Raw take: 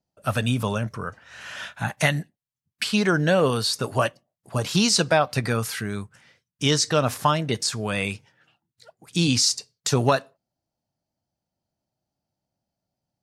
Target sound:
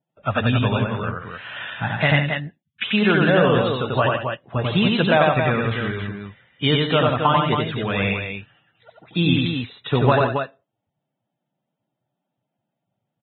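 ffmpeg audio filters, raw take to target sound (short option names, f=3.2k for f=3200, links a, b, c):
-af "aecho=1:1:90.38|160.3|274.1:0.794|0.316|0.501,aresample=8000,aresample=44100,volume=1.5dB" -ar 22050 -c:a libvorbis -b:a 16k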